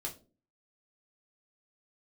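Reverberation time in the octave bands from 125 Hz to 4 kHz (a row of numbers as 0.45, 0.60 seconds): 0.55, 0.55, 0.45, 0.30, 0.25, 0.25 seconds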